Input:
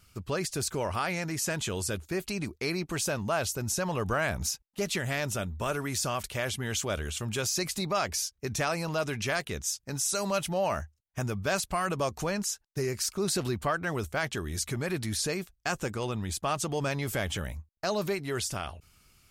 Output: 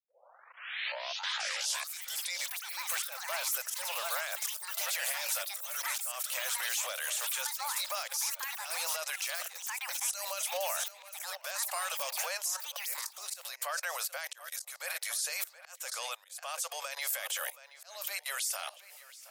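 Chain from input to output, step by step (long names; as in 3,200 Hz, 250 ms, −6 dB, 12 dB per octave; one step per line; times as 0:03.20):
turntable start at the beginning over 2.64 s
spectral tilt +3.5 dB per octave
on a send: feedback echo with a low-pass in the loop 723 ms, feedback 48%, low-pass 4,100 Hz, level −14 dB
on the sum: output level in coarse steps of 20 dB
volume swells 434 ms
brickwall limiter −31.5 dBFS, peak gain reduction 9 dB
Chebyshev high-pass filter 520 Hz, order 6
high-shelf EQ 11,000 Hz +8.5 dB
delay with pitch and tempo change per echo 577 ms, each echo +7 semitones, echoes 3
level +7 dB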